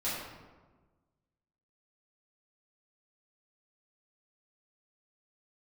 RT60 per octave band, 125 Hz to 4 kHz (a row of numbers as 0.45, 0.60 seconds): 1.7, 1.6, 1.4, 1.3, 1.0, 0.75 seconds